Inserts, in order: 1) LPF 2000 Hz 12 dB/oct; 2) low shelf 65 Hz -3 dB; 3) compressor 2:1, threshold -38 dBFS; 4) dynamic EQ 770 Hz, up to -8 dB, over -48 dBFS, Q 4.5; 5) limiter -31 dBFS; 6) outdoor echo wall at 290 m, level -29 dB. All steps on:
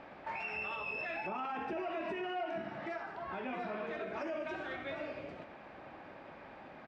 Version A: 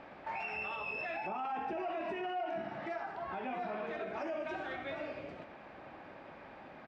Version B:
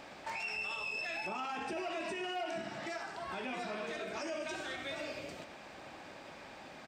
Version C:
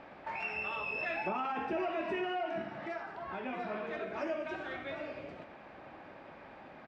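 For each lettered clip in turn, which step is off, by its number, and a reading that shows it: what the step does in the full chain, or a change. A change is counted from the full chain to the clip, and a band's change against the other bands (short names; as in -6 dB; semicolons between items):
4, 1 kHz band +2.5 dB; 1, 4 kHz band +9.0 dB; 5, crest factor change +5.0 dB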